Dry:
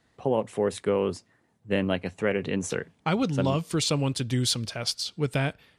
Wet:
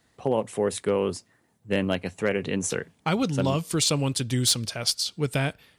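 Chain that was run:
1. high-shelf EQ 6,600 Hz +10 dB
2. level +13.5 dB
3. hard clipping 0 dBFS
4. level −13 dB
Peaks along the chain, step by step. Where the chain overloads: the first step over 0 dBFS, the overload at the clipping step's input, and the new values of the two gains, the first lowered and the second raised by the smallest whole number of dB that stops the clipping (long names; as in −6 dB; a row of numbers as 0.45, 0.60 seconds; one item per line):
−9.5, +4.0, 0.0, −13.0 dBFS
step 2, 4.0 dB
step 2 +9.5 dB, step 4 −9 dB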